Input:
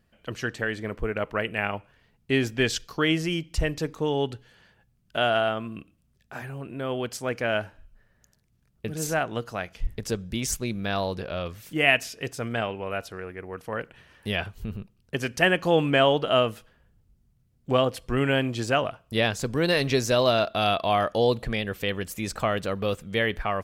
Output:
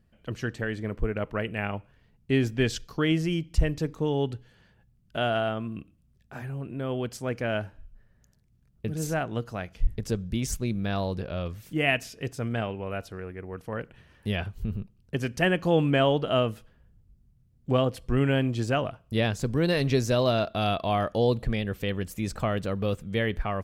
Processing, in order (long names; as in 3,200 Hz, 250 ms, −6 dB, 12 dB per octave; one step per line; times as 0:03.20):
low-shelf EQ 340 Hz +10 dB
level −5.5 dB